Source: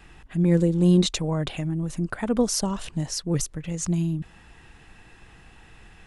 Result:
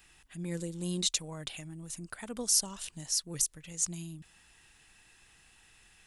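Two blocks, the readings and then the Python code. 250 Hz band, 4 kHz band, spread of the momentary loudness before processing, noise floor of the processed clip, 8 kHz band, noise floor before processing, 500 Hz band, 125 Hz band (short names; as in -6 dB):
-17.5 dB, -2.5 dB, 11 LU, -62 dBFS, +1.5 dB, -52 dBFS, -16.5 dB, -18.0 dB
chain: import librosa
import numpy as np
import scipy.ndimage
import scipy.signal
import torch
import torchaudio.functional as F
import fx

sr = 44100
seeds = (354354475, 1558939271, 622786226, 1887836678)

y = scipy.signal.lfilter([1.0, -0.9], [1.0], x)
y = F.gain(torch.from_numpy(y), 2.0).numpy()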